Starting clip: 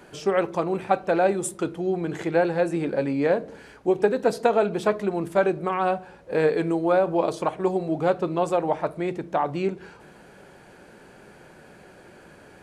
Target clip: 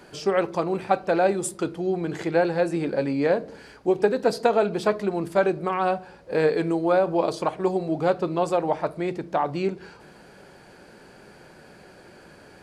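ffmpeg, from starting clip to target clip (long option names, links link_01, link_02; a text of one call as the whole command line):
ffmpeg -i in.wav -af "equalizer=frequency=4700:width_type=o:width=0.33:gain=7.5" out.wav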